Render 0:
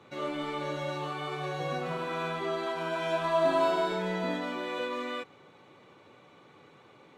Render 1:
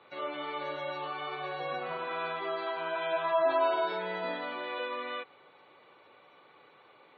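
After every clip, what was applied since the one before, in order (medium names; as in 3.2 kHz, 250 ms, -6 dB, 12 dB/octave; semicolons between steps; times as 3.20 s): three-band isolator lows -14 dB, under 420 Hz, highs -21 dB, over 5.3 kHz; spectral gate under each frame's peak -30 dB strong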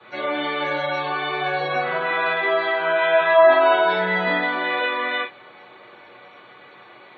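reverberation, pre-delay 3 ms, DRR -15 dB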